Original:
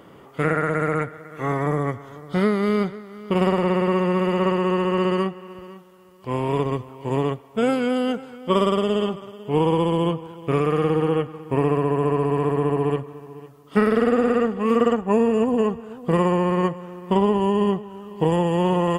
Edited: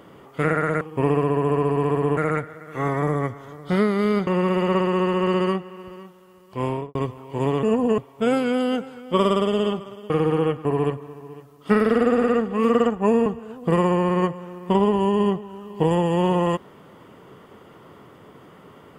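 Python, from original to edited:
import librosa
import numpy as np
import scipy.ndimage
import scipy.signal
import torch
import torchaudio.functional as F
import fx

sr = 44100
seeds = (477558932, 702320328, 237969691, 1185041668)

y = fx.studio_fade_out(x, sr, start_s=6.37, length_s=0.29)
y = fx.edit(y, sr, fx.cut(start_s=2.91, length_s=1.07),
    fx.cut(start_s=9.46, length_s=1.34),
    fx.move(start_s=11.35, length_s=1.36, to_s=0.81),
    fx.move(start_s=15.32, length_s=0.35, to_s=7.34), tone=tone)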